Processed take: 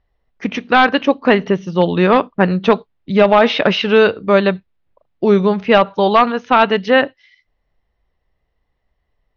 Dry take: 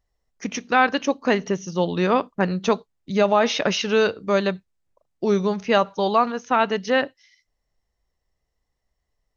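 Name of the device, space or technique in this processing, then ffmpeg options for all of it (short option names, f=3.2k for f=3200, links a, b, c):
synthesiser wavefolder: -filter_complex "[0:a]asettb=1/sr,asplit=3[a][b][c];[a]atrim=end=6.114[d];[b]atrim=start=6.11:end=6.88,asetpts=PTS-STARTPTS,afade=t=in:d=0.004:c=qsin,afade=t=out:st=0.766:d=0.004:c=qsin,highshelf=f=4.1k:g=6[e];[c]atrim=start=6.876[f];[d][e]acrossfade=d=0.004:c1=hsin:c2=qsin[g];[g][f]acrossfade=d=0.004:c1=qsin:c2=hsin,aeval=exprs='0.335*(abs(mod(val(0)/0.335+3,4)-2)-1)':c=same,lowpass=f=3.7k:w=0.5412,lowpass=f=3.7k:w=1.3066,volume=8dB"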